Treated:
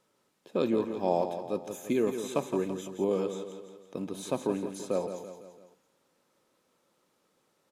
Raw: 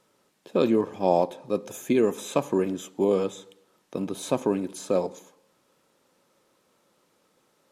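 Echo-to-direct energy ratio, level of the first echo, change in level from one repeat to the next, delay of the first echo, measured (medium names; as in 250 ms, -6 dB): -7.5 dB, -9.0 dB, -6.0 dB, 168 ms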